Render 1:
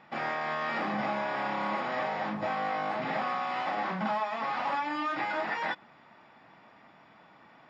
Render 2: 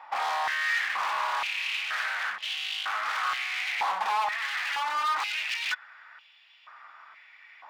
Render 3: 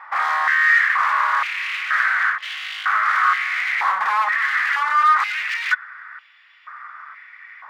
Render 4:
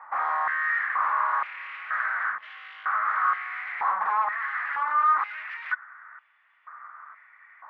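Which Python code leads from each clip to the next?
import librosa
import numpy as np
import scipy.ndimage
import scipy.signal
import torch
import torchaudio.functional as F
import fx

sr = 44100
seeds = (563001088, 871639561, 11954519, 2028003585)

y1 = 10.0 ** (-31.0 / 20.0) * (np.abs((x / 10.0 ** (-31.0 / 20.0) + 3.0) % 4.0 - 2.0) - 1.0)
y1 = fx.filter_held_highpass(y1, sr, hz=2.1, low_hz=900.0, high_hz=3000.0)
y1 = y1 * librosa.db_to_amplitude(2.5)
y2 = fx.band_shelf(y1, sr, hz=1500.0, db=13.0, octaves=1.2)
y3 = scipy.signal.sosfilt(scipy.signal.butter(2, 1100.0, 'lowpass', fs=sr, output='sos'), y2)
y3 = y3 * librosa.db_to_amplitude(-2.0)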